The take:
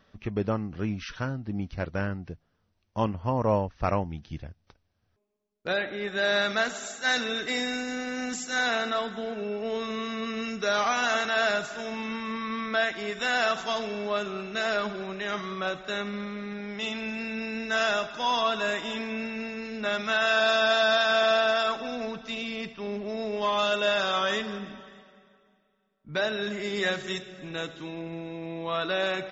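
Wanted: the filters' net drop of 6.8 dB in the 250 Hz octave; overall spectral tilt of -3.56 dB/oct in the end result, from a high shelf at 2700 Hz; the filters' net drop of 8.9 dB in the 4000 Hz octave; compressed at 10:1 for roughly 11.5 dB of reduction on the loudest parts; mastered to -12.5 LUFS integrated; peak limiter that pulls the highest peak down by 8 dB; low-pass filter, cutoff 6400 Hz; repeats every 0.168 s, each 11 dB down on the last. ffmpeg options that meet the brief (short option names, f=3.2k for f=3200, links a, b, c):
-af "lowpass=6.4k,equalizer=f=250:t=o:g=-8.5,highshelf=f=2.7k:g=-8,equalizer=f=4k:t=o:g=-4,acompressor=threshold=-33dB:ratio=10,alimiter=level_in=6dB:limit=-24dB:level=0:latency=1,volume=-6dB,aecho=1:1:168|336|504:0.282|0.0789|0.0221,volume=27dB"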